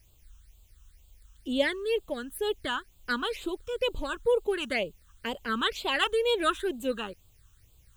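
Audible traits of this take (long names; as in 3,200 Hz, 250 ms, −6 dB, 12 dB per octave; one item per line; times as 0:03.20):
a quantiser's noise floor 12 bits, dither triangular
phaser sweep stages 8, 2.1 Hz, lowest notch 600–1,800 Hz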